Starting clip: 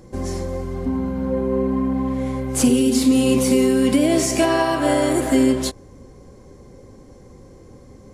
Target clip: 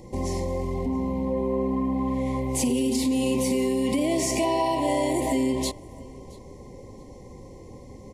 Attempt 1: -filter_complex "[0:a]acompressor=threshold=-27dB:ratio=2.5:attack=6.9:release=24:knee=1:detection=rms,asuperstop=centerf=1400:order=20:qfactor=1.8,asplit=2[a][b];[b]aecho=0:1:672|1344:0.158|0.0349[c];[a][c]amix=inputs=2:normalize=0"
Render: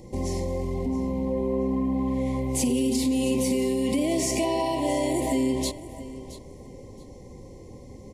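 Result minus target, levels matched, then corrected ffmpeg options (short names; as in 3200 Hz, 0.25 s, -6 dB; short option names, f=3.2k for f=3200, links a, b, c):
echo-to-direct +8.5 dB; 1000 Hz band -3.0 dB
-filter_complex "[0:a]acompressor=threshold=-27dB:ratio=2.5:attack=6.9:release=24:knee=1:detection=rms,asuperstop=centerf=1400:order=20:qfactor=1.8,equalizer=f=1.2k:t=o:w=1.2:g=5.5,asplit=2[a][b];[b]aecho=0:1:672|1344:0.0596|0.0131[c];[a][c]amix=inputs=2:normalize=0"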